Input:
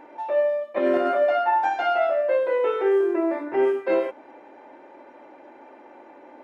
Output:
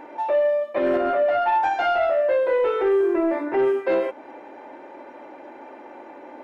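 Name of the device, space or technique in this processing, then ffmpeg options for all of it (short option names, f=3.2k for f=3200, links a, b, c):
soft clipper into limiter: -filter_complex "[0:a]asoftclip=type=tanh:threshold=-15dB,alimiter=limit=-20dB:level=0:latency=1:release=293,asettb=1/sr,asplit=3[a][b][c];[a]atrim=end=0.964[d];[b]atrim=start=0.96:end=1.42,asetpts=PTS-STARTPTS,afade=t=in:d=0.004:c=qsin,afade=t=out:st=0.456:d=0.004:c=qsin,highshelf=f=3.6k:g=-8[e];[c]atrim=start=1.416[f];[d][e]acrossfade=d=0.004:c1=hsin:c2=qsin[g];[g][f]acrossfade=d=0.004:c1=qsin:c2=hsin,volume=5.5dB"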